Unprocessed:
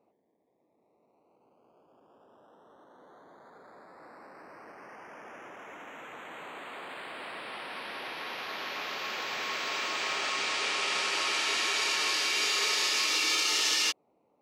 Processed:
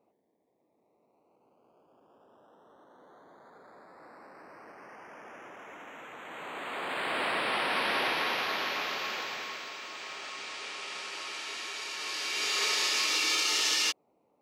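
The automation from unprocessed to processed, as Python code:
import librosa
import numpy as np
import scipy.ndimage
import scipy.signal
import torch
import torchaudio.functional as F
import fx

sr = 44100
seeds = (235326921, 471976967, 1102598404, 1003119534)

y = fx.gain(x, sr, db=fx.line((6.17, -1.0), (7.16, 10.5), (7.99, 10.5), (9.18, 0.0), (9.77, -9.5), (11.91, -9.5), (12.62, -0.5)))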